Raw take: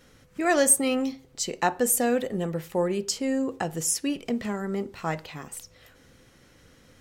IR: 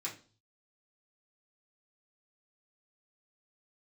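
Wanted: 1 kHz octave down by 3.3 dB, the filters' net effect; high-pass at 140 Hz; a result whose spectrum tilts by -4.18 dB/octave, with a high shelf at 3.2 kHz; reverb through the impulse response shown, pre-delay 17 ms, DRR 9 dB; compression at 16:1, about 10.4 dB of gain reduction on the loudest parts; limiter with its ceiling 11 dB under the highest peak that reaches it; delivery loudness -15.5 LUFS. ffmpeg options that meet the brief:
-filter_complex "[0:a]highpass=140,equalizer=f=1000:t=o:g=-4.5,highshelf=f=3200:g=-5.5,acompressor=threshold=0.0355:ratio=16,alimiter=level_in=1.58:limit=0.0631:level=0:latency=1,volume=0.631,asplit=2[s0][s1];[1:a]atrim=start_sample=2205,adelay=17[s2];[s1][s2]afir=irnorm=-1:irlink=0,volume=0.316[s3];[s0][s3]amix=inputs=2:normalize=0,volume=11.9"

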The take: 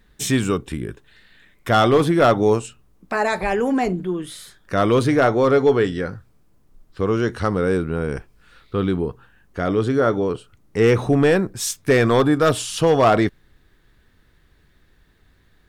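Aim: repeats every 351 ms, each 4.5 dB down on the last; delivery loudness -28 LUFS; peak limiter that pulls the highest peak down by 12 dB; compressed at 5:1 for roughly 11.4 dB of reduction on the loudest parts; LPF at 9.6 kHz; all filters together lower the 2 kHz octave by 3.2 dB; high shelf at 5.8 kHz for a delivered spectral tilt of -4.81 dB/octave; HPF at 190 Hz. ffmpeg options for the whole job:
-af "highpass=190,lowpass=9600,equalizer=f=2000:t=o:g=-3.5,highshelf=f=5800:g=-7,acompressor=threshold=0.0562:ratio=5,alimiter=limit=0.0631:level=0:latency=1,aecho=1:1:351|702|1053|1404|1755|2106|2457|2808|3159:0.596|0.357|0.214|0.129|0.0772|0.0463|0.0278|0.0167|0.01,volume=1.68"

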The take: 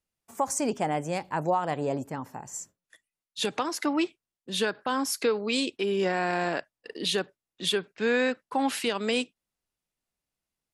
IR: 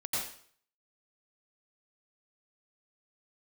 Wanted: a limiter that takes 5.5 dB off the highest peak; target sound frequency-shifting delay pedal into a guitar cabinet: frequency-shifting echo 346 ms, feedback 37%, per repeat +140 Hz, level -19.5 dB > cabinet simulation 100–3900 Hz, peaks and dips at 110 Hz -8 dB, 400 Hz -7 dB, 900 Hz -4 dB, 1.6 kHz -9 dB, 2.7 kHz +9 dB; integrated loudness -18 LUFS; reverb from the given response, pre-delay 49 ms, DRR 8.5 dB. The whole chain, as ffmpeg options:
-filter_complex "[0:a]alimiter=limit=0.1:level=0:latency=1,asplit=2[s0][s1];[1:a]atrim=start_sample=2205,adelay=49[s2];[s1][s2]afir=irnorm=-1:irlink=0,volume=0.211[s3];[s0][s3]amix=inputs=2:normalize=0,asplit=4[s4][s5][s6][s7];[s5]adelay=346,afreqshift=140,volume=0.106[s8];[s6]adelay=692,afreqshift=280,volume=0.0394[s9];[s7]adelay=1038,afreqshift=420,volume=0.0145[s10];[s4][s8][s9][s10]amix=inputs=4:normalize=0,highpass=100,equalizer=f=110:t=q:w=4:g=-8,equalizer=f=400:t=q:w=4:g=-7,equalizer=f=900:t=q:w=4:g=-4,equalizer=f=1600:t=q:w=4:g=-9,equalizer=f=2700:t=q:w=4:g=9,lowpass=f=3900:w=0.5412,lowpass=f=3900:w=1.3066,volume=5.01"

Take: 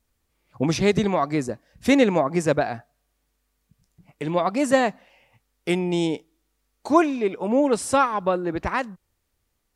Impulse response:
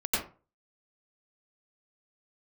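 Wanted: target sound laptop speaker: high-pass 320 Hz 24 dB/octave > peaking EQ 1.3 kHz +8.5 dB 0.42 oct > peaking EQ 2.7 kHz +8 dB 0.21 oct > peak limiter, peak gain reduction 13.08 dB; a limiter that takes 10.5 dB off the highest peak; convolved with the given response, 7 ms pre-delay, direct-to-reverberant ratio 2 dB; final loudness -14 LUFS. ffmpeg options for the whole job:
-filter_complex "[0:a]alimiter=limit=0.188:level=0:latency=1,asplit=2[s0][s1];[1:a]atrim=start_sample=2205,adelay=7[s2];[s1][s2]afir=irnorm=-1:irlink=0,volume=0.282[s3];[s0][s3]amix=inputs=2:normalize=0,highpass=f=320:w=0.5412,highpass=f=320:w=1.3066,equalizer=f=1300:t=o:w=0.42:g=8.5,equalizer=f=2700:t=o:w=0.21:g=8,volume=6.31,alimiter=limit=0.596:level=0:latency=1"

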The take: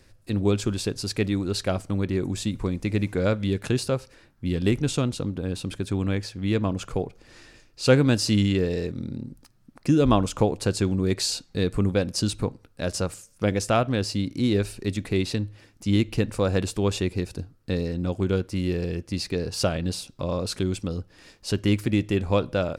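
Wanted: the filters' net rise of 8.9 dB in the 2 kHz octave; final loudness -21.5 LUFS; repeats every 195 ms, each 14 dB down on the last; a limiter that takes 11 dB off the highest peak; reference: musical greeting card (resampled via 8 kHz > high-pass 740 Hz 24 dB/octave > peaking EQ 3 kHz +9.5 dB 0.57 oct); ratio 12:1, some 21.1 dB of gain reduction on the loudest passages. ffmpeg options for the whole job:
-af "equalizer=f=2000:t=o:g=7.5,acompressor=threshold=0.02:ratio=12,alimiter=level_in=2.82:limit=0.0631:level=0:latency=1,volume=0.355,aecho=1:1:195|390:0.2|0.0399,aresample=8000,aresample=44100,highpass=f=740:w=0.5412,highpass=f=740:w=1.3066,equalizer=f=3000:t=o:w=0.57:g=9.5,volume=18.8"

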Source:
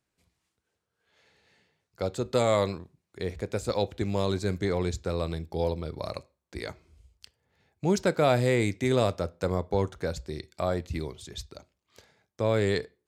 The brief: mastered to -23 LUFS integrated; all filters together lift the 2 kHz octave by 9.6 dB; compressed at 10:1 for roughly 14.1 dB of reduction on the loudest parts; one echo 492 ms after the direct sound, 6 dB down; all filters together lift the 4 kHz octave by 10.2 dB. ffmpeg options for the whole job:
-af "equalizer=f=2000:t=o:g=9,equalizer=f=4000:t=o:g=9,acompressor=threshold=0.0282:ratio=10,aecho=1:1:492:0.501,volume=4.73"

